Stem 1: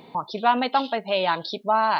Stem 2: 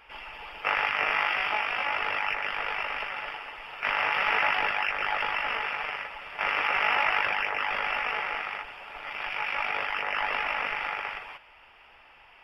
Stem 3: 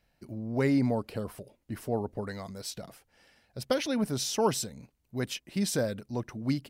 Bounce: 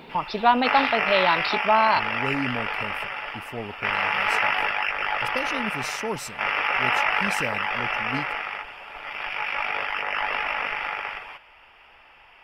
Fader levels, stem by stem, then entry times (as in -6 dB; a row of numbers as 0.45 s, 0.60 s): +1.5 dB, +2.5 dB, -3.5 dB; 0.00 s, 0.00 s, 1.65 s